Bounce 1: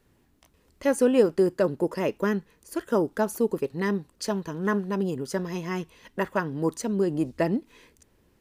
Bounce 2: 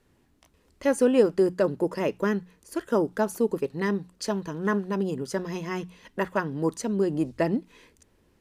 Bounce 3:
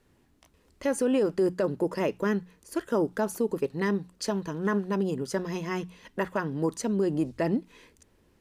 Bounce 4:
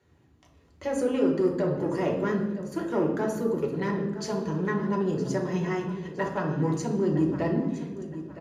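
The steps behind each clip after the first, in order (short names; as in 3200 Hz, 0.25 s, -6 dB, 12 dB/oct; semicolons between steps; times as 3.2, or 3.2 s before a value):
Bessel low-pass 12000 Hz, order 2; notches 60/120/180 Hz
limiter -17 dBFS, peak gain reduction 9 dB
feedback echo 0.964 s, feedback 31%, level -15 dB; soft clip -19 dBFS, distortion -19 dB; reverb RT60 1.2 s, pre-delay 3 ms, DRR -0.5 dB; gain -7.5 dB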